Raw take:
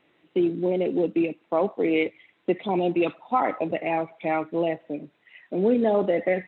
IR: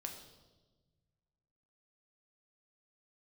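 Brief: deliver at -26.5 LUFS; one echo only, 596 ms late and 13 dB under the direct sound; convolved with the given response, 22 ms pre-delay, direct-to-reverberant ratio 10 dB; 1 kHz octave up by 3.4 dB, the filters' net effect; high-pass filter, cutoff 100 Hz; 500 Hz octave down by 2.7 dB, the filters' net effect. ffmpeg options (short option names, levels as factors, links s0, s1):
-filter_complex "[0:a]highpass=100,equalizer=f=500:t=o:g=-5.5,equalizer=f=1000:t=o:g=7,aecho=1:1:596:0.224,asplit=2[s0][s1];[1:a]atrim=start_sample=2205,adelay=22[s2];[s1][s2]afir=irnorm=-1:irlink=0,volume=0.422[s3];[s0][s3]amix=inputs=2:normalize=0,volume=0.891"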